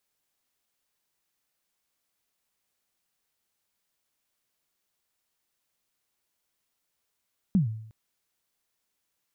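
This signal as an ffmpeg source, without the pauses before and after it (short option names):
-f lavfi -i "aevalsrc='0.158*pow(10,-3*t/0.69)*sin(2*PI*(210*0.124/log(110/210)*(exp(log(110/210)*min(t,0.124)/0.124)-1)+110*max(t-0.124,0)))':d=0.36:s=44100"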